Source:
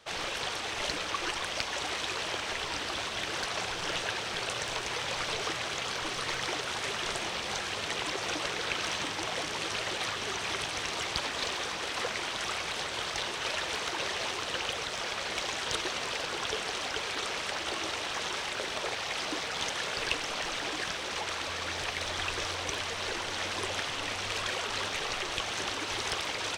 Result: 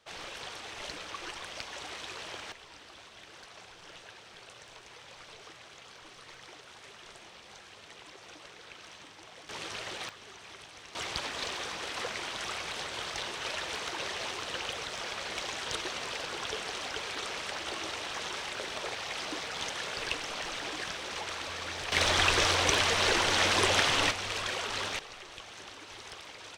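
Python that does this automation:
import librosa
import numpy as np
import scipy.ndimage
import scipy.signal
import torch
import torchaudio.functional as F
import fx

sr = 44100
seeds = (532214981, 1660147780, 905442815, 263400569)

y = fx.gain(x, sr, db=fx.steps((0.0, -8.0), (2.52, -17.0), (9.49, -6.0), (10.09, -15.5), (10.95, -3.0), (21.92, 8.0), (24.11, -1.0), (24.99, -13.0)))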